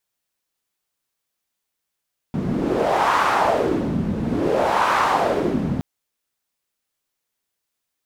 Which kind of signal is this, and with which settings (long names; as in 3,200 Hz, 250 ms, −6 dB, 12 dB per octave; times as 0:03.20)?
wind from filtered noise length 3.47 s, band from 180 Hz, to 1,100 Hz, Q 2.6, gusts 2, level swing 4 dB